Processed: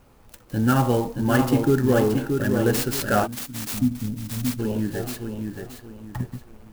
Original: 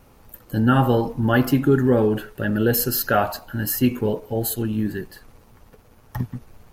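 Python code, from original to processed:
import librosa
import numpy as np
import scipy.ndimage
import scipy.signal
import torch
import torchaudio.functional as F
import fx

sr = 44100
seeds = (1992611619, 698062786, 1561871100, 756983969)

p1 = x + fx.echo_feedback(x, sr, ms=625, feedback_pct=32, wet_db=-5, dry=0)
p2 = fx.spec_box(p1, sr, start_s=3.27, length_s=1.32, low_hz=310.0, high_hz=11000.0, gain_db=-26)
p3 = fx.low_shelf(p2, sr, hz=170.0, db=-12.0, at=(3.25, 3.74))
p4 = fx.clock_jitter(p3, sr, seeds[0], jitter_ms=0.033)
y = F.gain(torch.from_numpy(p4), -2.5).numpy()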